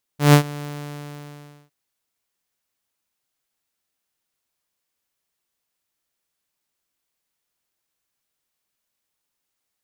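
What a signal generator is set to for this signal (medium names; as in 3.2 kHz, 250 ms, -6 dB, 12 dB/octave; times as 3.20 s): ADSR saw 146 Hz, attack 145 ms, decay 90 ms, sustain -22 dB, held 0.44 s, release 1070 ms -4.5 dBFS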